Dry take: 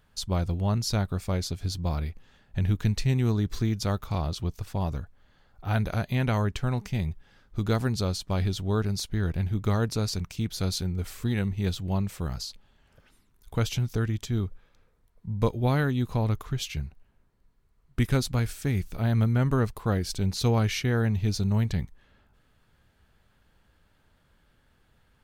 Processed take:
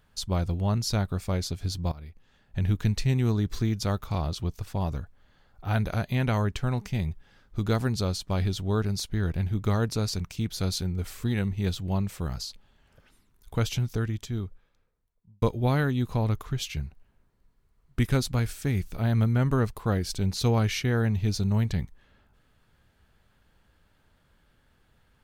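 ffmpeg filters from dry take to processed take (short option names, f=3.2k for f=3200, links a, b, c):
-filter_complex "[0:a]asplit=3[a][b][c];[a]atrim=end=1.92,asetpts=PTS-STARTPTS,afade=t=out:st=1.916:d=0.004:c=hsin:silence=0.125893[d];[b]atrim=start=1.92:end=15.42,asetpts=PTS-STARTPTS,afade=t=in:d=0.76:silence=0.125893,afade=t=out:st=11.87:d=1.63[e];[c]atrim=start=15.42,asetpts=PTS-STARTPTS,afade=t=in:d=0.004:c=hsin[f];[d][e][f]concat=n=3:v=0:a=1"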